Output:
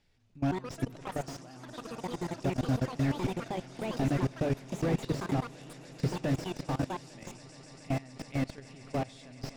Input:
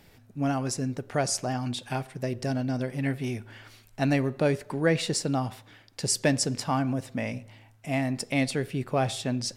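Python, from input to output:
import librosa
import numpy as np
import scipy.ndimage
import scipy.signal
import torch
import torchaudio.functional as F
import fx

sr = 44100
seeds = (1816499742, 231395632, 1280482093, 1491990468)

p1 = fx.recorder_agc(x, sr, target_db=-15.0, rise_db_per_s=5.5, max_gain_db=30)
p2 = fx.high_shelf(p1, sr, hz=2400.0, db=8.5)
p3 = fx.hum_notches(p2, sr, base_hz=50, count=3)
p4 = p3 + fx.echo_swell(p3, sr, ms=141, loudest=8, wet_db=-14.5, dry=0)
p5 = fx.level_steps(p4, sr, step_db=23)
p6 = fx.echo_pitch(p5, sr, ms=201, semitones=5, count=3, db_per_echo=-6.0)
p7 = scipy.signal.sosfilt(scipy.signal.butter(2, 6000.0, 'lowpass', fs=sr, output='sos'), p6)
p8 = fx.low_shelf(p7, sr, hz=81.0, db=12.0)
p9 = fx.slew_limit(p8, sr, full_power_hz=41.0)
y = p9 * librosa.db_to_amplitude(-4.5)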